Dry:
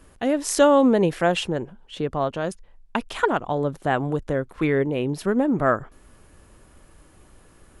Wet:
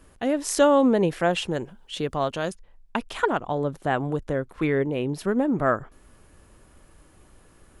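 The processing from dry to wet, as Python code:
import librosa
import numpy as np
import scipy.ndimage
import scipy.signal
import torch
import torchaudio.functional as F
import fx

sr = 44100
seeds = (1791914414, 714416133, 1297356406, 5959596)

y = fx.high_shelf(x, sr, hz=2700.0, db=11.0, at=(1.48, 2.5))
y = y * 10.0 ** (-2.0 / 20.0)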